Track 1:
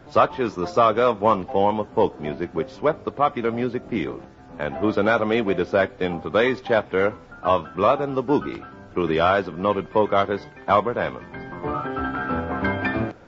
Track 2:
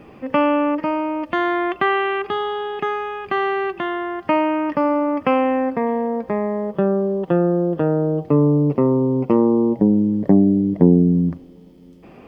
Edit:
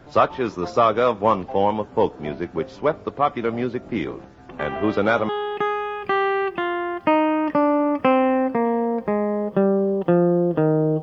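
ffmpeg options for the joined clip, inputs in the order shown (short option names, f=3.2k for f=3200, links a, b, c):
-filter_complex "[1:a]asplit=2[a][b];[0:a]apad=whole_dur=11.02,atrim=end=11.02,atrim=end=5.292[c];[b]atrim=start=2.508:end=8.24[d];[a]atrim=start=1.71:end=2.51,asetpts=PTS-STARTPTS,volume=-13.5dB,afade=t=in:d=0.004:c=hsin,afade=t=out:st=0.796:d=0.004:c=hsin,adelay=198009S[e];[c][d]acrossfade=d=0.004:c1=hsin:c2=hsin[f];[f][e]amix=inputs=2:normalize=0"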